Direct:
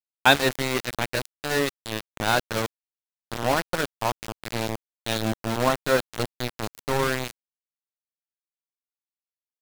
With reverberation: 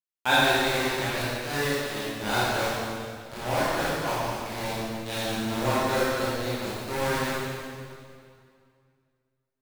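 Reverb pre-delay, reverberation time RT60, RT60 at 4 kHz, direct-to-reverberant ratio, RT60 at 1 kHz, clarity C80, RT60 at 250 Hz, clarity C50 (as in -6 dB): 20 ms, 2.2 s, 2.0 s, -10.5 dB, 2.2 s, -2.0 dB, 2.4 s, -4.5 dB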